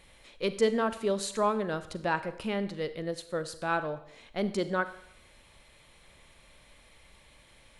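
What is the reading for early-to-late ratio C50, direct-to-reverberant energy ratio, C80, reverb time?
13.5 dB, 12.0 dB, 16.0 dB, 0.65 s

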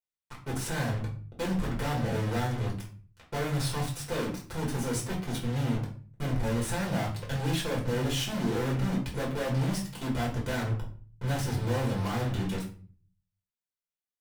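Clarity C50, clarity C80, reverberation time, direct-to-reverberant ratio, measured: 7.5 dB, 13.0 dB, 0.40 s, -3.5 dB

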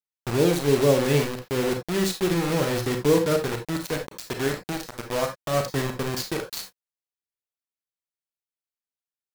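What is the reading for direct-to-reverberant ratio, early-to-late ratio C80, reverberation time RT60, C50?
4.0 dB, 15.5 dB, not exponential, 8.5 dB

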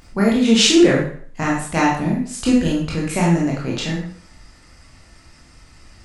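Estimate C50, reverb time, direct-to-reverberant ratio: 3.0 dB, 0.50 s, -4.0 dB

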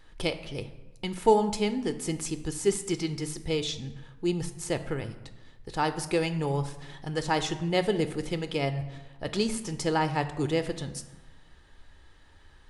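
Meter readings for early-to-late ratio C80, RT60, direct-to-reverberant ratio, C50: 14.5 dB, 1.1 s, 9.5 dB, 12.5 dB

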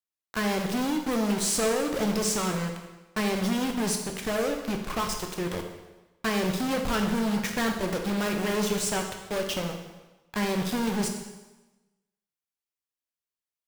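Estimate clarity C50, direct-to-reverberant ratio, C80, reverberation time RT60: 6.0 dB, 3.0 dB, 7.5 dB, 1.1 s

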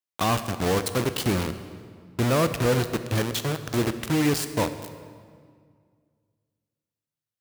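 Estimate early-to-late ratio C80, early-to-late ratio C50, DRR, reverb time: 12.0 dB, 11.0 dB, 10.0 dB, 2.0 s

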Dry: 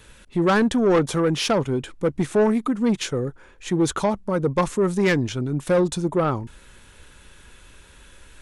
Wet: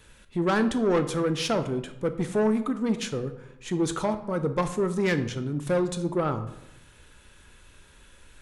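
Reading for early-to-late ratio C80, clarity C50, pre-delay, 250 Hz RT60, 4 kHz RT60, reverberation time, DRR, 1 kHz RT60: 14.5 dB, 12.0 dB, 13 ms, 1.1 s, 0.50 s, 0.90 s, 9.0 dB, 0.85 s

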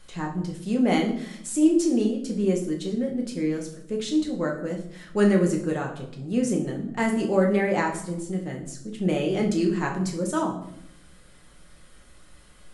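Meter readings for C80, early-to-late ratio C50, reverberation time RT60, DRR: 12.0 dB, 8.0 dB, 0.70 s, 0.0 dB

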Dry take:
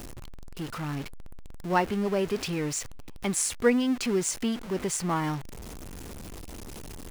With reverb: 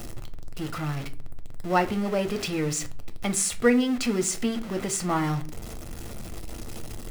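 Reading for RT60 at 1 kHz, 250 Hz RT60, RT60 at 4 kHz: 0.35 s, 0.60 s, 0.30 s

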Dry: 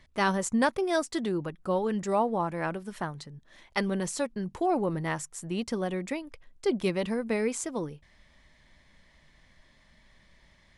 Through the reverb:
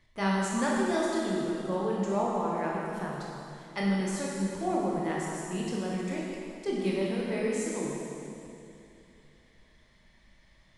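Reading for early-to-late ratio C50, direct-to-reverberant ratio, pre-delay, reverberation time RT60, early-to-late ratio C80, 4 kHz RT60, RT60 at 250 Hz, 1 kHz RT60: -1.5 dB, -4.5 dB, 15 ms, 2.7 s, 0.0 dB, 2.5 s, 3.0 s, 2.6 s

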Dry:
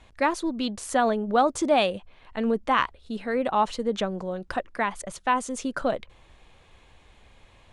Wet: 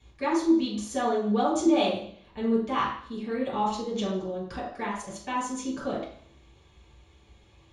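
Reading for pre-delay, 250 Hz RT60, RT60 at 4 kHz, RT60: 3 ms, 0.65 s, 0.70 s, 0.60 s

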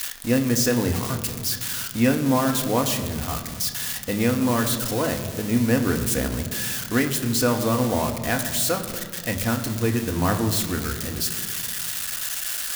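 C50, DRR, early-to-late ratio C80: 9.5 dB, 4.0 dB, 10.5 dB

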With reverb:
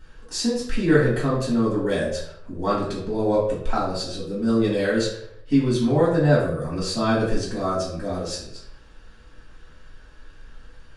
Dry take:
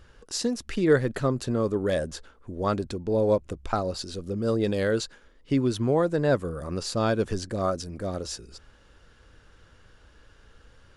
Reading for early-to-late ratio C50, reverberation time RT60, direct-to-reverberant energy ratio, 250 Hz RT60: 4.0 dB, 0.70 s, -7.5 dB, 0.65 s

